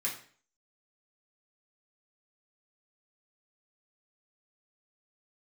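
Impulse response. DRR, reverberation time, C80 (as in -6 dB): -5.0 dB, 0.45 s, 12.0 dB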